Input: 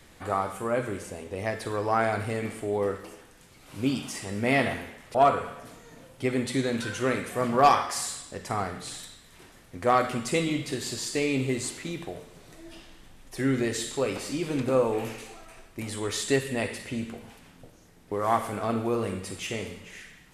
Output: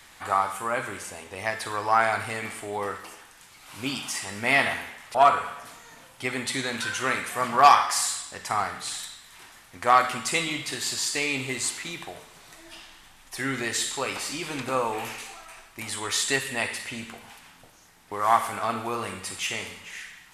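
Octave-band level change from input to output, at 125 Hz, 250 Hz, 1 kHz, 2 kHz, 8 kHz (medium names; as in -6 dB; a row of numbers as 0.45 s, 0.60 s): -7.0 dB, -6.5 dB, +4.5 dB, +6.0 dB, +6.0 dB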